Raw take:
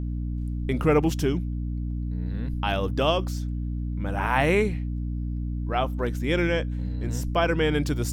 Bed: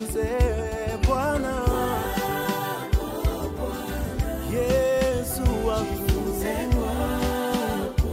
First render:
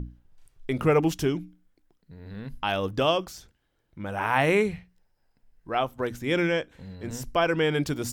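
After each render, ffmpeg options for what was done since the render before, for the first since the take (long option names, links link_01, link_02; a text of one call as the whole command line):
ffmpeg -i in.wav -af "bandreject=frequency=60:width_type=h:width=6,bandreject=frequency=120:width_type=h:width=6,bandreject=frequency=180:width_type=h:width=6,bandreject=frequency=240:width_type=h:width=6,bandreject=frequency=300:width_type=h:width=6" out.wav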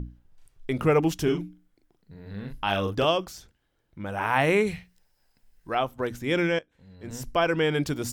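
ffmpeg -i in.wav -filter_complex "[0:a]asettb=1/sr,asplit=3[link_01][link_02][link_03];[link_01]atrim=end=1.234[link_04];[link_02]atrim=start=1.23:end=3.05,asetpts=PTS-STARTPTS,afade=type=in:duration=0.004:curve=qsin,afade=type=out:start_time=1.816:duration=0.004:curve=qsin,asplit=2[link_05][link_06];[link_06]adelay=40,volume=-5dB[link_07];[link_05][link_07]amix=inputs=2:normalize=0,atrim=end_sample=80262[link_08];[link_03]atrim=start=3.046[link_09];[link_04][link_08]acrossfade=duration=0.004:curve1=hsin:curve2=qsin[link_10];[link_10][link_09]acrossfade=duration=0.004:curve1=qsin:curve2=hsin,asplit=3[link_11][link_12][link_13];[link_11]afade=type=out:start_time=4.66:duration=0.02[link_14];[link_12]highshelf=frequency=2200:gain=11,afade=type=in:start_time=4.66:duration=0.02,afade=type=out:start_time=5.73:duration=0.02[link_15];[link_13]afade=type=in:start_time=5.73:duration=0.02[link_16];[link_14][link_15][link_16]amix=inputs=3:normalize=0,asplit=2[link_17][link_18];[link_17]atrim=end=6.59,asetpts=PTS-STARTPTS,afade=type=out:start_time=6.586:duration=0.004:curve=hsin:silence=0.158489[link_19];[link_18]atrim=start=6.59,asetpts=PTS-STARTPTS,afade=type=in:duration=0.64:curve=qua:silence=0.158489[link_20];[link_19][link_20]concat=n=2:v=0:a=1" out.wav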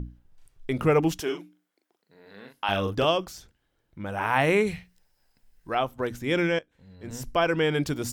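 ffmpeg -i in.wav -filter_complex "[0:a]asettb=1/sr,asplit=3[link_01][link_02][link_03];[link_01]atrim=end=1.204[link_04];[link_02]atrim=start=1.2:end=2.69,asetpts=PTS-STARTPTS,afade=type=in:duration=0.004:curve=qsin,afade=type=out:start_time=1.486:duration=0.004:curve=qsin,highpass=440[link_05];[link_03]atrim=start=2.686[link_06];[link_04][link_05]acrossfade=duration=0.004:curve1=hsin:curve2=qsin[link_07];[link_07][link_06]acrossfade=duration=0.004:curve1=qsin:curve2=hsin" out.wav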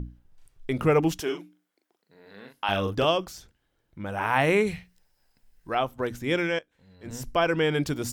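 ffmpeg -i in.wav -filter_complex "[0:a]asettb=1/sr,asplit=3[link_01][link_02][link_03];[link_01]atrim=end=6.364[link_04];[link_02]atrim=start=6.36:end=7.06,asetpts=PTS-STARTPTS,afade=type=in:duration=0.004:curve=qsin,afade=type=out:start_time=0.696:duration=0.004:curve=qsin,lowshelf=frequency=350:gain=-6.5[link_05];[link_03]atrim=start=7.056[link_06];[link_04][link_05]acrossfade=duration=0.004:curve1=hsin:curve2=qsin[link_07];[link_07][link_06]acrossfade=duration=0.004:curve1=qsin:curve2=hsin" out.wav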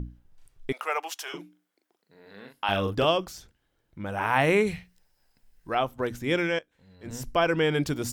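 ffmpeg -i in.wav -filter_complex "[0:a]asettb=1/sr,asplit=3[link_01][link_02][link_03];[link_01]atrim=end=0.724[link_04];[link_02]atrim=start=0.72:end=1.34,asetpts=PTS-STARTPTS,afade=type=in:duration=0.004:curve=qsin,afade=type=out:start_time=0.616:duration=0.004:curve=qsin,highpass=frequency=700:width=0.5412,highpass=frequency=700:width=1.3066[link_05];[link_03]atrim=start=1.336[link_06];[link_04][link_05]acrossfade=duration=0.004:curve1=hsin:curve2=qsin[link_07];[link_07][link_06]acrossfade=duration=0.004:curve1=qsin:curve2=hsin,asettb=1/sr,asplit=3[link_08][link_09][link_10];[link_08]atrim=end=2.424[link_11];[link_09]atrim=start=2.42:end=3.19,asetpts=PTS-STARTPTS,afade=type=in:duration=0.004:curve=qsin,afade=type=out:start_time=0.766:duration=0.004:curve=qsin,bandreject=frequency=6100:width=12[link_12];[link_10]atrim=start=3.186[link_13];[link_11][link_12]acrossfade=duration=0.004:curve1=hsin:curve2=qsin[link_14];[link_14][link_13]acrossfade=duration=0.004:curve1=qsin:curve2=hsin" out.wav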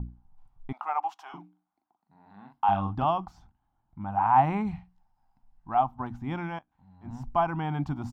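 ffmpeg -i in.wav -af "firequalizer=gain_entry='entry(240,0);entry(480,-24);entry(780,9);entry(1700,-14);entry(10000,-30)':delay=0.05:min_phase=1" out.wav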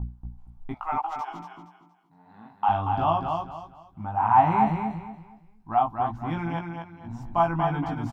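ffmpeg -i in.wav -filter_complex "[0:a]asplit=2[link_01][link_02];[link_02]adelay=18,volume=-2.5dB[link_03];[link_01][link_03]amix=inputs=2:normalize=0,aecho=1:1:234|468|702|936:0.562|0.163|0.0473|0.0137" out.wav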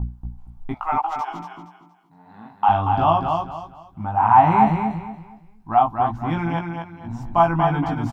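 ffmpeg -i in.wav -af "volume=6dB,alimiter=limit=-3dB:level=0:latency=1" out.wav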